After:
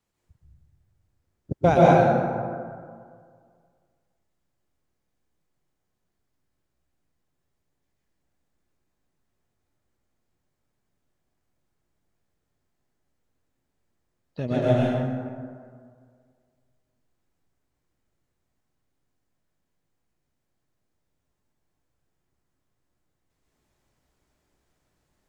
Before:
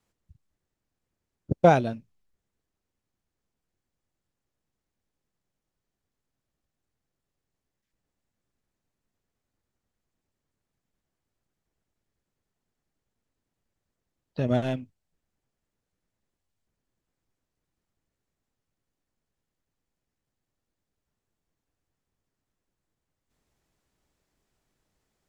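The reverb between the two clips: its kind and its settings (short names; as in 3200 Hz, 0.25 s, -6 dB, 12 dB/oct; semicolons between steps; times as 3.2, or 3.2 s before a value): plate-style reverb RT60 2 s, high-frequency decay 0.45×, pre-delay 0.11 s, DRR -6.5 dB; gain -3 dB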